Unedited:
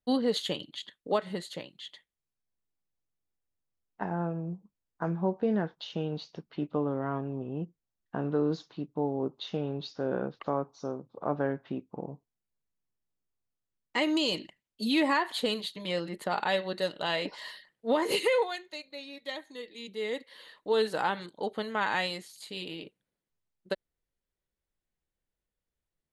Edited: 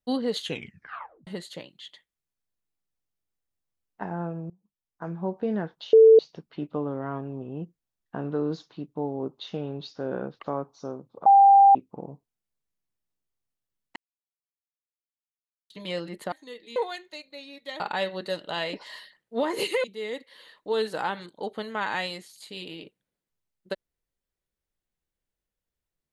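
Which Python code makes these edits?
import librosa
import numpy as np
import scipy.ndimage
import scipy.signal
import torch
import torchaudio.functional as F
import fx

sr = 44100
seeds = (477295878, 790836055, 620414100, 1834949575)

y = fx.edit(x, sr, fx.tape_stop(start_s=0.42, length_s=0.85),
    fx.fade_in_from(start_s=4.5, length_s=0.88, floor_db=-23.5),
    fx.bleep(start_s=5.93, length_s=0.26, hz=445.0, db=-9.5),
    fx.bleep(start_s=11.26, length_s=0.49, hz=793.0, db=-11.0),
    fx.silence(start_s=13.96, length_s=1.74),
    fx.swap(start_s=16.32, length_s=2.04, other_s=19.4, other_length_s=0.44), tone=tone)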